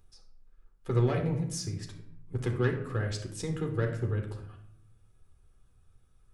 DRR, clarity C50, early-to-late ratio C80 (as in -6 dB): 2.0 dB, 7.5 dB, 11.0 dB